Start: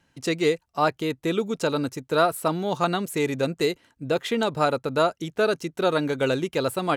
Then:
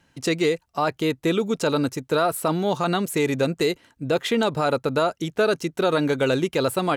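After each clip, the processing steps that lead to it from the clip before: peak limiter -16 dBFS, peak gain reduction 7.5 dB; trim +4 dB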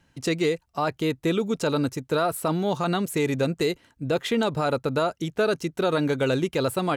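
bass shelf 130 Hz +7 dB; trim -3 dB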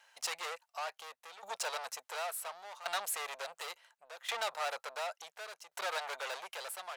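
saturation -31 dBFS, distortion -6 dB; tremolo saw down 0.7 Hz, depth 85%; inverse Chebyshev high-pass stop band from 320 Hz, stop band 40 dB; trim +3.5 dB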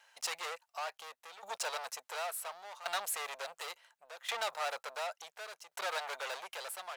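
block-companded coder 7-bit

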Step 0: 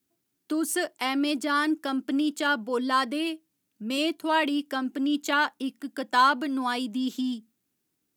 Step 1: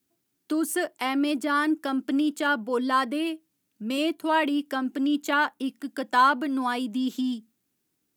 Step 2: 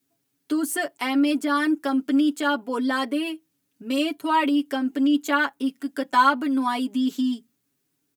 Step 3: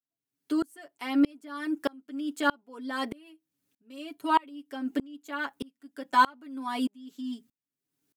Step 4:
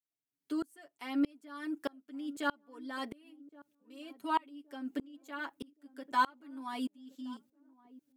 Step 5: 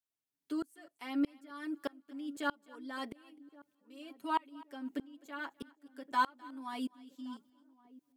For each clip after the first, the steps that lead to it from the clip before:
dynamic bell 5.1 kHz, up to -7 dB, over -44 dBFS, Q 0.77; trim +1.5 dB
comb 7.2 ms, depth 79%
sawtooth tremolo in dB swelling 1.6 Hz, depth 31 dB
band-passed feedback delay 1120 ms, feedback 43%, band-pass 320 Hz, level -19 dB; trim -7.5 dB
thinning echo 257 ms, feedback 27%, high-pass 420 Hz, level -22 dB; trim -1.5 dB

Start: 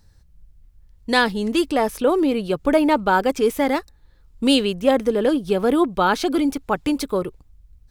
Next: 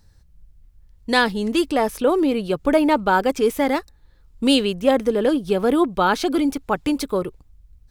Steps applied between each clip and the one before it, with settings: no audible change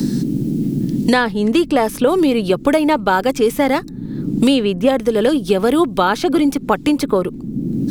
band noise 120–300 Hz -40 dBFS; three bands compressed up and down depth 100%; trim +3.5 dB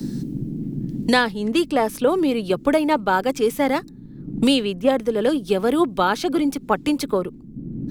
three bands expanded up and down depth 100%; trim -4.5 dB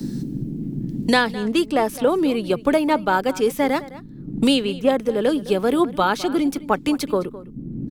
echo from a far wall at 36 m, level -17 dB

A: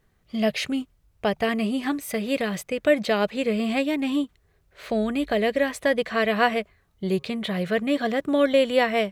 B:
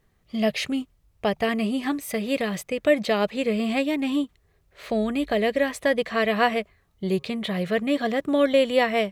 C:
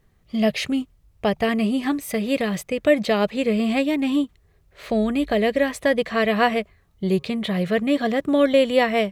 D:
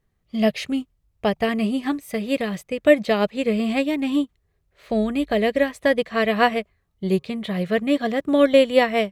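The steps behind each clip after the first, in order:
band-stop 1.5 kHz, Q 15
bass shelf 250 Hz +4.5 dB; trim +1.5 dB
upward expansion 1.5:1, over -38 dBFS; trim +3 dB

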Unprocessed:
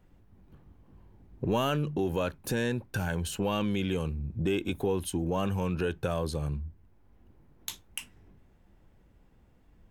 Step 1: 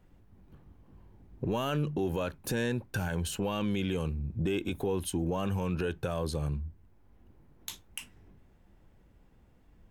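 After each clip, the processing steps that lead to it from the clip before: peak limiter -21.5 dBFS, peak gain reduction 4.5 dB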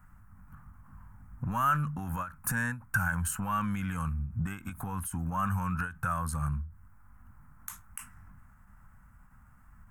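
in parallel at -2 dB: compression, threshold -40 dBFS, peak gain reduction 13 dB; on the sum: FFT filter 120 Hz 0 dB, 240 Hz -4 dB, 380 Hz -27 dB, 1.3 kHz +13 dB, 3.6 kHz -18 dB, 8.5 kHz +5 dB; endings held to a fixed fall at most 150 dB/s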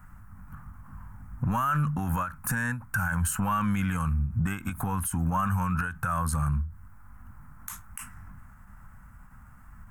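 peak limiter -26 dBFS, peak gain reduction 9 dB; trim +7 dB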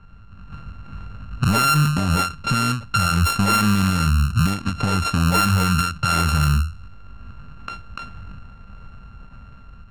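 sorted samples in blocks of 32 samples; level-controlled noise filter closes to 2.2 kHz, open at -22.5 dBFS; level rider gain up to 6 dB; trim +3 dB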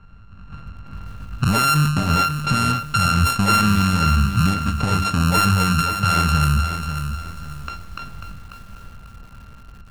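bit-crushed delay 542 ms, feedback 35%, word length 7-bit, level -8 dB

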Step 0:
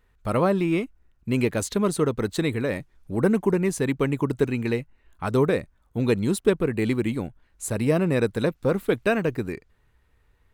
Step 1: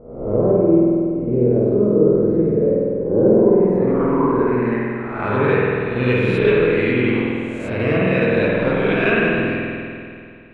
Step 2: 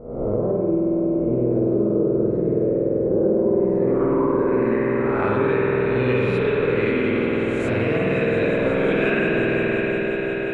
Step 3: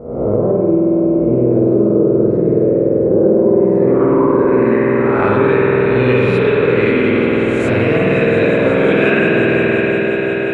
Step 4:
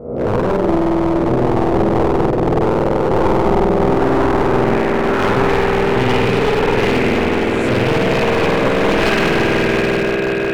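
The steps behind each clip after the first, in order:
reverse spectral sustain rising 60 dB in 0.79 s; low-pass sweep 440 Hz -> 2.7 kHz, 3.00–5.59 s; spring tank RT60 2.4 s, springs 48 ms, chirp 55 ms, DRR -4.5 dB; trim -2.5 dB
compression 4:1, threshold -24 dBFS, peak gain reduction 13 dB; on a send: echo with a slow build-up 177 ms, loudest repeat 5, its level -14 dB; on the sum: trim +3.5 dB
high-pass 60 Hz; trim +7.5 dB
one-sided wavefolder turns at -13.5 dBFS

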